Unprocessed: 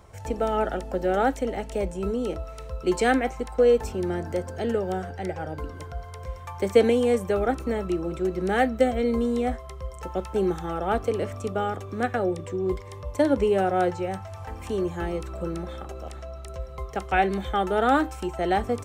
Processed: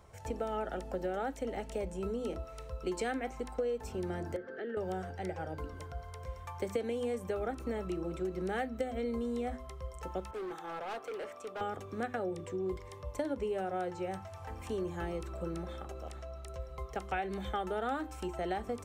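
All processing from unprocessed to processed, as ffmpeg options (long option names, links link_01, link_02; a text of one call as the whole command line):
ffmpeg -i in.wav -filter_complex "[0:a]asettb=1/sr,asplit=3[link_01][link_02][link_03];[link_01]atrim=end=4.364[link_04];[link_02]atrim=start=4.36:end=4.77,asetpts=PTS-STARTPTS,afade=type=in:duration=0.004:curve=qsin,afade=type=out:start_time=0.406:duration=0.004:curve=qsin,highpass=frequency=220:width=0.5412,highpass=frequency=220:width=1.3066,equalizer=frequency=400:width_type=q:width=4:gain=6,equalizer=frequency=730:width_type=q:width=4:gain=-8,equalizer=frequency=1100:width_type=q:width=4:gain=10,equalizer=frequency=1700:width_type=q:width=4:gain=9,equalizer=frequency=2500:width_type=q:width=4:gain=-7,lowpass=frequency=3300:width=0.5412,lowpass=frequency=3300:width=1.3066,acompressor=threshold=-31dB:ratio=3:attack=3.2:release=140:knee=1:detection=peak,asuperstop=centerf=1000:order=4:qfactor=2.6[link_05];[link_03]atrim=start=4.766[link_06];[link_04][link_05]acrossfade=duration=0.004:curve1=hsin:curve2=qsin[link_07];[link_07][link_06]acrossfade=duration=0.004:curve1=qsin:curve2=hsin,asettb=1/sr,asplit=3[link_08][link_09][link_10];[link_08]atrim=end=10.314[link_11];[link_09]atrim=start=10.31:end=11.61,asetpts=PTS-STARTPTS,afade=type=in:duration=0.004:curve=qsin,afade=type=out:start_time=1.296:duration=0.004:curve=qsin,highpass=440,volume=30.5dB,asoftclip=hard,volume=-30.5dB,adynamicequalizer=threshold=0.00251:dfrequency=3800:dqfactor=0.7:tfrequency=3800:tqfactor=0.7:attack=5:release=100:ratio=0.375:range=2.5:mode=cutabove:tftype=highshelf[link_12];[link_10]atrim=start=11.606[link_13];[link_11][link_12]acrossfade=duration=0.004:curve1=hsin:curve2=qsin[link_14];[link_14][link_13]acrossfade=duration=0.004:curve1=qsin:curve2=hsin,bandreject=frequency=50:width_type=h:width=6,bandreject=frequency=100:width_type=h:width=6,bandreject=frequency=150:width_type=h:width=6,bandreject=frequency=200:width_type=h:width=6,bandreject=frequency=250:width_type=h:width=6,bandreject=frequency=300:width_type=h:width=6,bandreject=frequency=350:width_type=h:width=6,acompressor=threshold=-25dB:ratio=6,volume=-6.5dB" out.wav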